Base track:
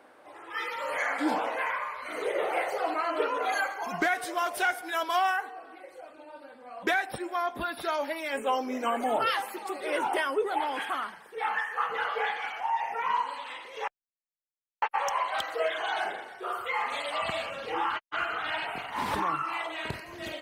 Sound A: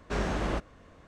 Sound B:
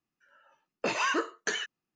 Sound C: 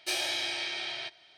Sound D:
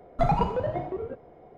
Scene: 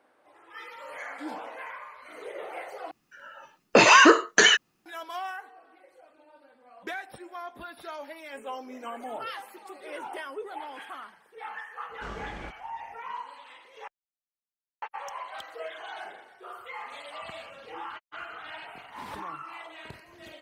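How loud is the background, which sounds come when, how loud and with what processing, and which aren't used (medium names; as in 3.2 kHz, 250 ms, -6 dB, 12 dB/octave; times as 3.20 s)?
base track -9.5 dB
2.91 s: replace with B -4.5 dB + loudness maximiser +20.5 dB
11.91 s: add A -11.5 dB
not used: C, D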